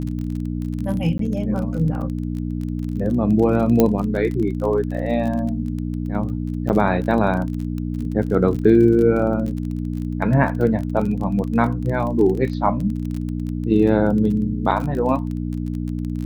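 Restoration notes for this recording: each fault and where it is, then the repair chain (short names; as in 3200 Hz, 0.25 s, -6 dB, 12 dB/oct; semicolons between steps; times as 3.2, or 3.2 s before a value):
crackle 26/s -26 dBFS
hum 60 Hz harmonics 5 -25 dBFS
1.18–1.19 gap 13 ms
3.8 pop -3 dBFS
6.69–6.7 gap 8.5 ms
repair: de-click; de-hum 60 Hz, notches 5; interpolate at 1.18, 13 ms; interpolate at 6.69, 8.5 ms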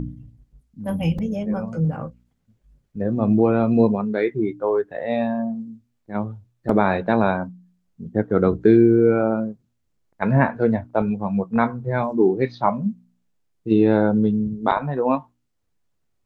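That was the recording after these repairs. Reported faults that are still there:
none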